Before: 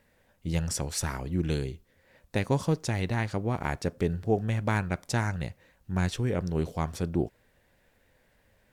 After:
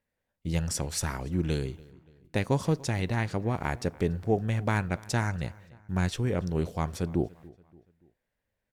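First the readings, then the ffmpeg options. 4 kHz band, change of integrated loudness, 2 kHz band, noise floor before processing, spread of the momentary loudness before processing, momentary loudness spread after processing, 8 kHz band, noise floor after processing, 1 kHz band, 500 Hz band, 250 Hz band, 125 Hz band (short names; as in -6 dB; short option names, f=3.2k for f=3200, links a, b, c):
0.0 dB, 0.0 dB, 0.0 dB, -67 dBFS, 7 LU, 7 LU, 0.0 dB, -84 dBFS, 0.0 dB, 0.0 dB, 0.0 dB, 0.0 dB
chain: -filter_complex "[0:a]agate=range=-18dB:threshold=-55dB:ratio=16:detection=peak,asplit=2[a][b];[b]adelay=287,lowpass=f=3.9k:p=1,volume=-22.5dB,asplit=2[c][d];[d]adelay=287,lowpass=f=3.9k:p=1,volume=0.47,asplit=2[e][f];[f]adelay=287,lowpass=f=3.9k:p=1,volume=0.47[g];[a][c][e][g]amix=inputs=4:normalize=0"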